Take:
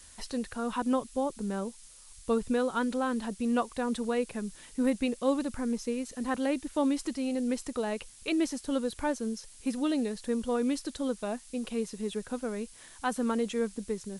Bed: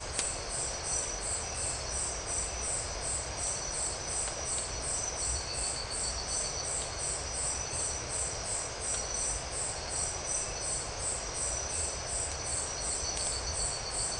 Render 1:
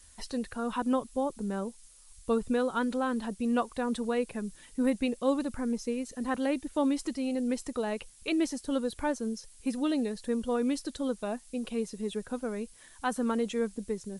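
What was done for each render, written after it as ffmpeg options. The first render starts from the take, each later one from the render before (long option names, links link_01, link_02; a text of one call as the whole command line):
ffmpeg -i in.wav -af "afftdn=noise_reduction=6:noise_floor=-53" out.wav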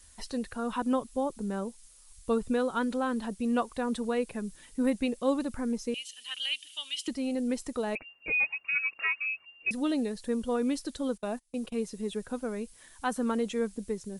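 ffmpeg -i in.wav -filter_complex "[0:a]asettb=1/sr,asplit=3[link_01][link_02][link_03];[link_01]atrim=end=5.944[link_04];[link_02]atrim=start=5.94:end=7.08,asetpts=PTS-STARTPTS,afade=type=in:duration=0.004:curve=qsin,afade=type=out:start_time=1.136:duration=0.004:curve=qsin,highpass=frequency=3000:width_type=q:width=13[link_05];[link_03]atrim=start=7.076[link_06];[link_04][link_05]acrossfade=duration=0.004:curve1=hsin:curve2=qsin[link_07];[link_07][link_06]acrossfade=duration=0.004:curve1=qsin:curve2=hsin,asettb=1/sr,asplit=3[link_08][link_09][link_10];[link_08]atrim=end=7.954[link_11];[link_09]atrim=start=7.95:end=9.71,asetpts=PTS-STARTPTS,afade=type=in:duration=0.004:curve=qsin,afade=type=out:start_time=1.756:duration=0.004:curve=qsin,lowpass=frequency=2400:width_type=q:width=0.5098,lowpass=frequency=2400:width_type=q:width=0.6013,lowpass=frequency=2400:width_type=q:width=0.9,lowpass=frequency=2400:width_type=q:width=2.563,afreqshift=-2800[link_12];[link_10]atrim=start=9.706[link_13];[link_11][link_12]acrossfade=duration=0.004:curve1=hsin:curve2=qsin[link_14];[link_14][link_13]acrossfade=duration=0.004:curve1=qsin:curve2=hsin,asplit=3[link_15][link_16][link_17];[link_15]afade=type=out:start_time=11.16:duration=0.02[link_18];[link_16]agate=range=-21dB:threshold=-42dB:ratio=16:release=100:detection=peak,afade=type=in:start_time=11.16:duration=0.02,afade=type=out:start_time=11.86:duration=0.02[link_19];[link_17]afade=type=in:start_time=11.86:duration=0.02[link_20];[link_18][link_19][link_20]amix=inputs=3:normalize=0" out.wav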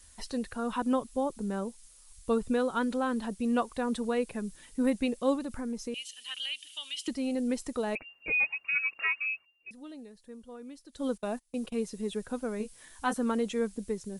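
ffmpeg -i in.wav -filter_complex "[0:a]asettb=1/sr,asplit=3[link_01][link_02][link_03];[link_01]atrim=end=5.354[link_04];[link_02]atrim=start=5.35:end=7.02,asetpts=PTS-STARTPTS,afade=type=in:duration=0.004:curve=qsin,afade=type=out:start_time=1.666:duration=0.004:curve=qsin,acompressor=threshold=-34dB:ratio=2:attack=3.2:release=140:knee=1:detection=peak[link_05];[link_03]atrim=start=7.016[link_06];[link_04][link_05]acrossfade=duration=0.004:curve1=hsin:curve2=qsin[link_07];[link_07][link_06]acrossfade=duration=0.004:curve1=qsin:curve2=hsin,asettb=1/sr,asplit=3[link_08][link_09][link_10];[link_08]atrim=end=12.584[link_11];[link_09]atrim=start=12.58:end=13.14,asetpts=PTS-STARTPTS,afade=type=in:duration=0.004:curve=qsin,afade=type=out:start_time=0.556:duration=0.004:curve=qsin,asplit=2[link_12][link_13];[link_13]adelay=19,volume=-5dB[link_14];[link_12][link_14]amix=inputs=2:normalize=0,atrim=end_sample=24696[link_15];[link_10]atrim=start=13.136[link_16];[link_11][link_15]acrossfade=duration=0.004:curve1=hsin:curve2=qsin[link_17];[link_17][link_16]acrossfade=duration=0.004:curve1=qsin:curve2=hsin,asplit=3[link_18][link_19][link_20];[link_18]atrim=end=9.47,asetpts=PTS-STARTPTS,afade=type=out:start_time=9.34:duration=0.13:silence=0.149624[link_21];[link_19]atrim=start=9.47:end=10.92,asetpts=PTS-STARTPTS,volume=-16.5dB[link_22];[link_20]atrim=start=10.92,asetpts=PTS-STARTPTS,afade=type=in:duration=0.13:silence=0.149624[link_23];[link_21][link_22][link_23]concat=n=3:v=0:a=1" out.wav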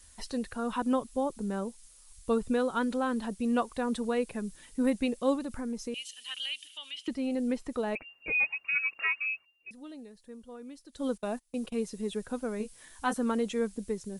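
ffmpeg -i in.wav -filter_complex "[0:a]asettb=1/sr,asplit=3[link_01][link_02][link_03];[link_01]atrim=end=6.674[link_04];[link_02]atrim=start=6.67:end=8.35,asetpts=PTS-STARTPTS,afade=type=in:duration=0.004:curve=qsin,afade=type=out:start_time=1.676:duration=0.004:curve=qsin,acrossover=split=3400[link_05][link_06];[link_06]acompressor=threshold=-55dB:ratio=4:attack=1:release=60[link_07];[link_05][link_07]amix=inputs=2:normalize=0[link_08];[link_03]atrim=start=8.346[link_09];[link_04][link_08]acrossfade=duration=0.004:curve1=hsin:curve2=qsin[link_10];[link_10][link_09]acrossfade=duration=0.004:curve1=qsin:curve2=hsin" out.wav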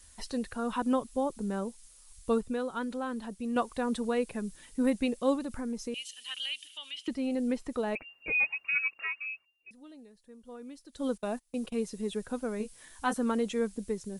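ffmpeg -i in.wav -filter_complex "[0:a]asplit=5[link_01][link_02][link_03][link_04][link_05];[link_01]atrim=end=2.412[link_06];[link_02]atrim=start=2.408:end=3.562,asetpts=PTS-STARTPTS,volume=-5dB[link_07];[link_03]atrim=start=3.558:end=8.882[link_08];[link_04]atrim=start=8.878:end=10.452,asetpts=PTS-STARTPTS,volume=-5.5dB[link_09];[link_05]atrim=start=10.448[link_10];[link_06][link_07]acrossfade=duration=0.004:curve1=hsin:curve2=hsin[link_11];[link_11][link_08]acrossfade=duration=0.004:curve1=hsin:curve2=hsin[link_12];[link_12][link_09]acrossfade=duration=0.004:curve1=hsin:curve2=hsin[link_13];[link_13][link_10]acrossfade=duration=0.004:curve1=hsin:curve2=hsin" out.wav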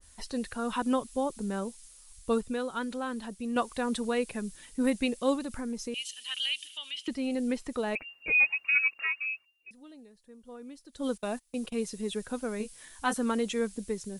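ffmpeg -i in.wav -af "adynamicequalizer=threshold=0.00631:dfrequency=1500:dqfactor=0.7:tfrequency=1500:tqfactor=0.7:attack=5:release=100:ratio=0.375:range=2.5:mode=boostabove:tftype=highshelf" out.wav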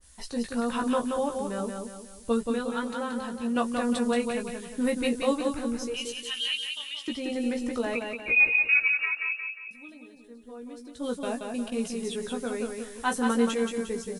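ffmpeg -i in.wav -filter_complex "[0:a]asplit=2[link_01][link_02];[link_02]adelay=17,volume=-4.5dB[link_03];[link_01][link_03]amix=inputs=2:normalize=0,aecho=1:1:178|356|534|712|890:0.596|0.25|0.105|0.0441|0.0185" out.wav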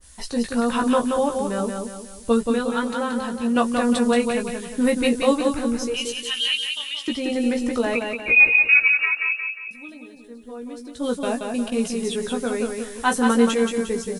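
ffmpeg -i in.wav -af "volume=7dB" out.wav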